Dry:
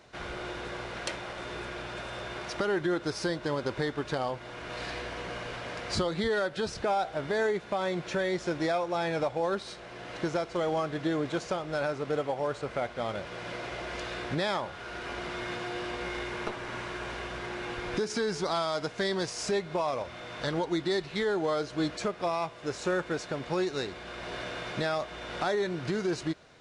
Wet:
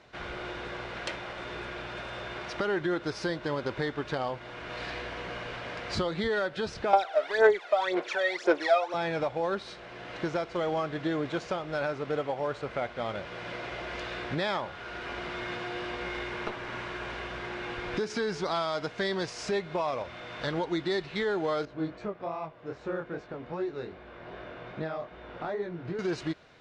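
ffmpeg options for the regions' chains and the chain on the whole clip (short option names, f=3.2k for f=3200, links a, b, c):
-filter_complex "[0:a]asettb=1/sr,asplit=3[a][b][c];[a]atrim=end=6.934[d];[b]atrim=start=6.93:end=8.94,asetpts=PTS-STARTPTS,afade=t=in:d=0.004:c=qsin,afade=t=out:st=2.006:d=0.004:c=qsin,highpass=f=370:w=0.5412,highpass=f=370:w=1.3066,aphaser=in_gain=1:out_gain=1:delay=1.6:decay=0.74:speed=1.9:type=sinusoidal[e];[c]atrim=start=8.936[f];[d][e]acrossfade=d=0.004:c1=hsin:c2=qsin[g];[g][f]acrossfade=d=0.004:c1=qsin:c2=hsin,asettb=1/sr,asplit=3[h][i][j];[h]atrim=end=21.654[k];[i]atrim=start=21.65:end=25.99,asetpts=PTS-STARTPTS,afade=t=in:d=0.004:c=qsin,afade=t=out:st=4.336:d=0.004:c=qsin,lowpass=f=1k:p=1,flanger=delay=19:depth=6.1:speed=2.5[l];[j]atrim=start=25.986[m];[k][l]acrossfade=d=0.004:c1=hsin:c2=qsin[n];[n][m]acrossfade=d=0.004:c1=qsin:c2=hsin,lowpass=2.8k,aemphasis=mode=production:type=75fm"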